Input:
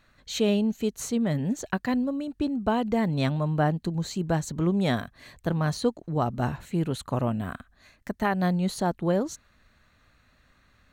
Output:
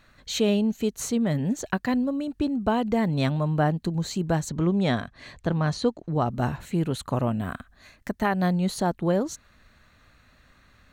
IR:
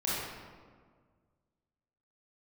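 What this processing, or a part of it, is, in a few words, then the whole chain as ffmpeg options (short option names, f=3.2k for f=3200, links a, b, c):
parallel compression: -filter_complex "[0:a]asplit=2[a][b];[b]acompressor=threshold=-35dB:ratio=6,volume=-3.5dB[c];[a][c]amix=inputs=2:normalize=0,asettb=1/sr,asplit=3[d][e][f];[d]atrim=end=4.494[g];[e]atrim=start=4.49:end=6.28,asetpts=PTS-STARTPTS,afade=t=in:d=0.004:c=qsin,afade=t=out:st=1.786:d=0.004:c=qsin,lowpass=6.7k[h];[f]atrim=start=6.276[i];[g][h]acrossfade=d=0.004:c1=hsin:c2=qsin[j];[j][i]acrossfade=d=0.004:c1=qsin:c2=hsin"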